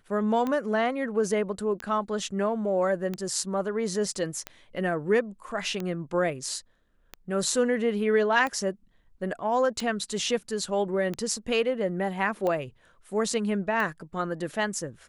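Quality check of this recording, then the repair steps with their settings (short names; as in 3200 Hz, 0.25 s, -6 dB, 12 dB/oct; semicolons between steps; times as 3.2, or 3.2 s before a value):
tick 45 rpm -18 dBFS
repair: de-click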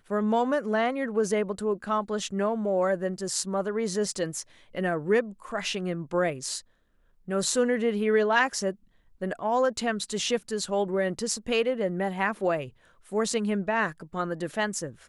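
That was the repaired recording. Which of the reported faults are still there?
none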